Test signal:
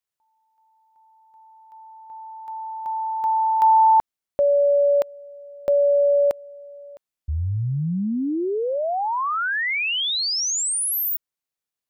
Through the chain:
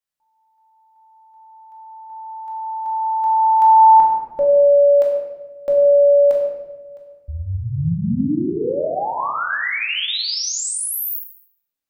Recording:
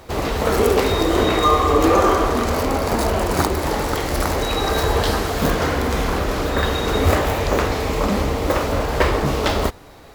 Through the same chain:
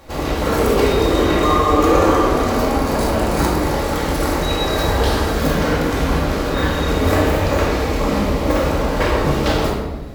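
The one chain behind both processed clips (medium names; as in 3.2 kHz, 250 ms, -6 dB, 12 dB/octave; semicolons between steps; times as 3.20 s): simulated room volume 690 m³, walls mixed, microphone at 2.3 m; trim -4 dB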